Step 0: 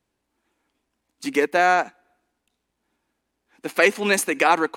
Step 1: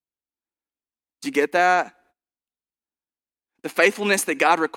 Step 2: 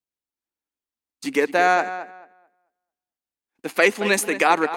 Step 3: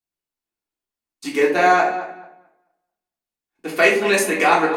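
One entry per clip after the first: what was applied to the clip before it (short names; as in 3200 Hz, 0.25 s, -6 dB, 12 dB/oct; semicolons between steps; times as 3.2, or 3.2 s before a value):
gate -55 dBFS, range -26 dB
tape echo 0.22 s, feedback 23%, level -11.5 dB, low-pass 2900 Hz
shoebox room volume 440 m³, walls furnished, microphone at 3.4 m; gain -3 dB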